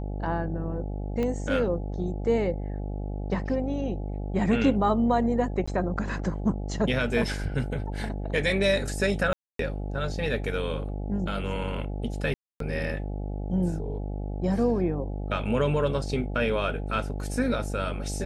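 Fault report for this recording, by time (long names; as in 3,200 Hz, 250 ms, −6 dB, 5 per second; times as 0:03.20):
mains buzz 50 Hz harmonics 17 −32 dBFS
0:01.23: click −18 dBFS
0:05.66–0:05.67: drop-out 15 ms
0:09.33–0:09.59: drop-out 263 ms
0:12.34–0:12.60: drop-out 263 ms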